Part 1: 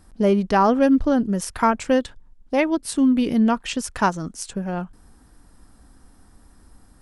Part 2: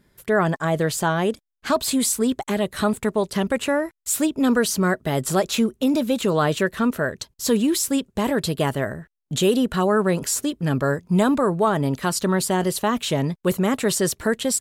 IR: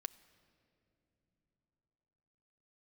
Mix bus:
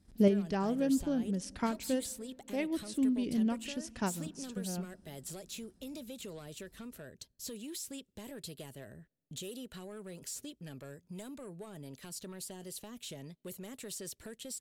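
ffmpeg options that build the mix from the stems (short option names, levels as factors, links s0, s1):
-filter_complex "[0:a]highpass=46,agate=range=0.282:threshold=0.002:ratio=16:detection=peak,lowpass=7100,volume=0.668,asplit=2[s0][s1];[s1]volume=0.316[s2];[1:a]acrossover=split=460|5600[s3][s4][s5];[s3]acompressor=threshold=0.0224:ratio=4[s6];[s4]acompressor=threshold=0.0398:ratio=4[s7];[s5]acompressor=threshold=0.0398:ratio=4[s8];[s6][s7][s8]amix=inputs=3:normalize=0,asoftclip=type=tanh:threshold=0.106,volume=0.211,asplit=3[s9][s10][s11];[s10]volume=0.075[s12];[s11]apad=whole_len=309277[s13];[s0][s13]sidechaincompress=threshold=0.00224:ratio=5:attack=6.1:release=728[s14];[2:a]atrim=start_sample=2205[s15];[s2][s12]amix=inputs=2:normalize=0[s16];[s16][s15]afir=irnorm=-1:irlink=0[s17];[s14][s9][s17]amix=inputs=3:normalize=0,equalizer=f=1100:t=o:w=1.7:g=-12"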